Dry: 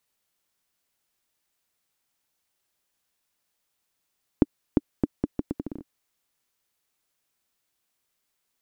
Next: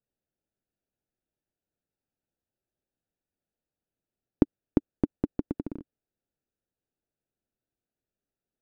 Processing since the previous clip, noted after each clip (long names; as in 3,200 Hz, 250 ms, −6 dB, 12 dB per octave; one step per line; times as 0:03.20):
adaptive Wiener filter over 41 samples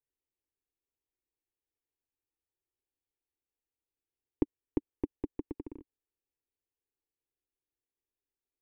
phaser with its sweep stopped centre 940 Hz, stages 8
level −5 dB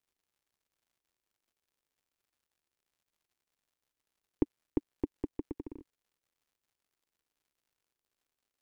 surface crackle 160 per second −67 dBFS